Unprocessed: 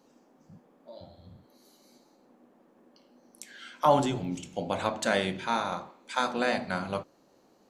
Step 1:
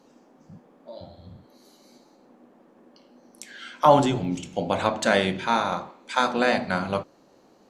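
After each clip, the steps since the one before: high shelf 10000 Hz -9 dB; gain +6 dB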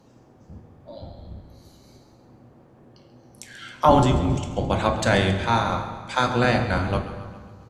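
octaver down 1 oct, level +3 dB; feedback echo 0.136 s, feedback 56%, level -15 dB; reverb RT60 1.8 s, pre-delay 7 ms, DRR 8 dB

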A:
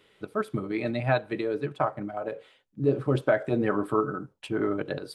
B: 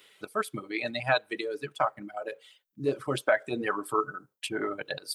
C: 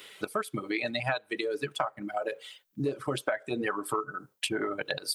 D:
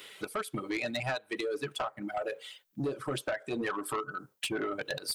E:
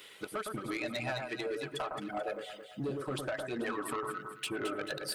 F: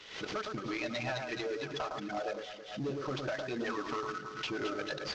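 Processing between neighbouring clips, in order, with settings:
reverb removal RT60 2 s; tilt +3.5 dB/oct; gain +1 dB
compressor 6:1, threshold -37 dBFS, peak gain reduction 17 dB; gain +9 dB
soft clip -26 dBFS, distortion -12 dB
echo with dull and thin repeats by turns 0.109 s, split 1600 Hz, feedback 65%, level -4 dB; gain -3.5 dB
CVSD 32 kbps; backwards sustainer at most 91 dB/s

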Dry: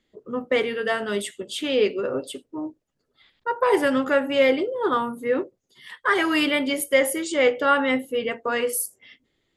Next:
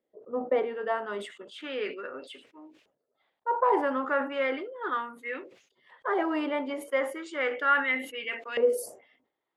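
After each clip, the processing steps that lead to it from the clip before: dynamic EQ 280 Hz, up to +8 dB, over -36 dBFS, Q 0.88; LFO band-pass saw up 0.35 Hz 550–2800 Hz; sustainer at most 110 dB/s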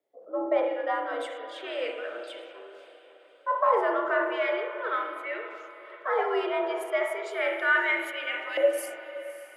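diffused feedback echo 0.58 s, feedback 44%, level -14.5 dB; frequency shift +80 Hz; spring tank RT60 1.2 s, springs 33/48 ms, chirp 35 ms, DRR 4.5 dB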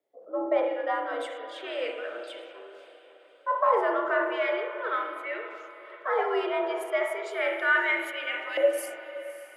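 nothing audible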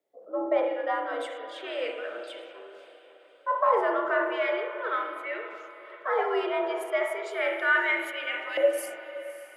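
bell 190 Hz +5.5 dB 0.22 oct

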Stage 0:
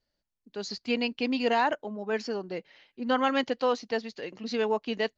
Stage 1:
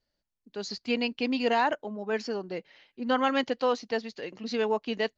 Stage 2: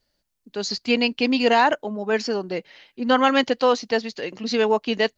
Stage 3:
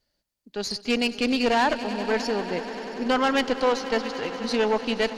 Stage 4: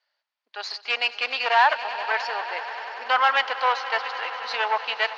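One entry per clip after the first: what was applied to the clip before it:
nothing audible
high shelf 4500 Hz +5 dB; gain +7.5 dB
tube stage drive 16 dB, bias 0.6; swelling echo 96 ms, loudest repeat 5, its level -17.5 dB
HPF 800 Hz 24 dB/oct; air absorption 260 m; gain +8 dB

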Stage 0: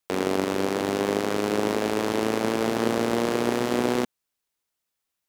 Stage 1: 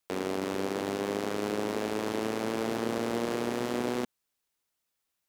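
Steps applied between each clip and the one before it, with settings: limiter -19.5 dBFS, peak gain reduction 10.5 dB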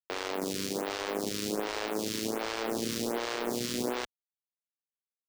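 bell 5200 Hz +11 dB 1.8 oct; bit-crush 6-bit; photocell phaser 1.3 Hz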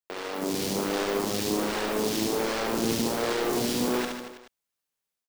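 AGC gain up to 8.5 dB; soft clip -23 dBFS, distortion -8 dB; reverse bouncing-ball echo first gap 70 ms, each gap 1.1×, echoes 5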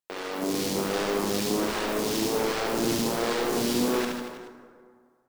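wow and flutter 20 cents; plate-style reverb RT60 2 s, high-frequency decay 0.5×, DRR 7.5 dB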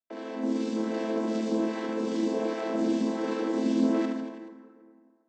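chord vocoder minor triad, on A3

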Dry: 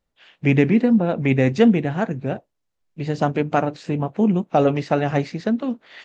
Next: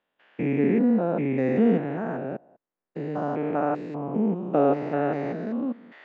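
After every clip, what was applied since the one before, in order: stepped spectrum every 0.2 s; three-band isolator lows -23 dB, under 180 Hz, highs -18 dB, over 2000 Hz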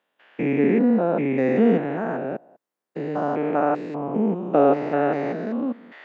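HPF 230 Hz 6 dB/oct; gain +5 dB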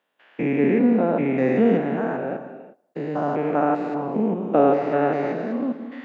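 non-linear reverb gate 0.39 s flat, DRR 8.5 dB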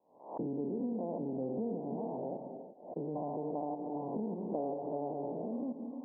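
compressor 4:1, threshold -29 dBFS, peak gain reduction 14 dB; steep low-pass 1000 Hz 96 dB/oct; backwards sustainer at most 110 dB/s; gain -6.5 dB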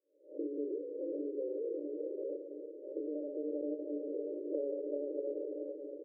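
G.711 law mismatch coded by A; FFT band-pass 280–610 Hz; outdoor echo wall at 110 m, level -6 dB; gain +3.5 dB

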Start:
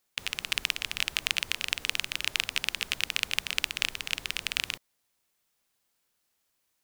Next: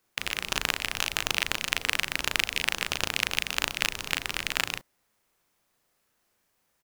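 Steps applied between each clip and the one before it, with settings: in parallel at -5 dB: sample-rate reducer 4600 Hz, jitter 0%; on the sum: doubler 37 ms -4 dB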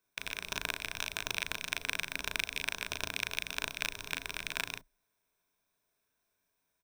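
ripple EQ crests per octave 1.6, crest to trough 9 dB; gain -9 dB

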